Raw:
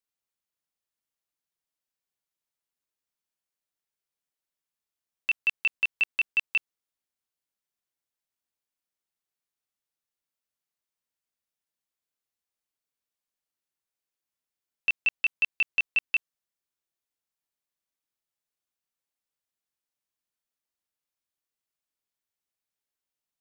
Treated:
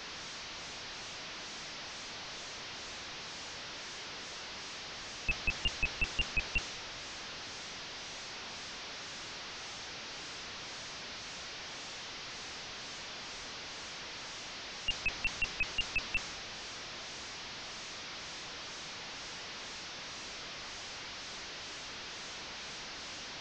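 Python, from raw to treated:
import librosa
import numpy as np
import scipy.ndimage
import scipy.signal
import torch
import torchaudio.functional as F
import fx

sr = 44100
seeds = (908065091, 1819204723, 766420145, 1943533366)

y = fx.delta_mod(x, sr, bps=32000, step_db=-38.0)
y = fx.wow_flutter(y, sr, seeds[0], rate_hz=2.1, depth_cents=87.0)
y = fx.band_widen(y, sr, depth_pct=40)
y = F.gain(torch.from_numpy(y), 1.0).numpy()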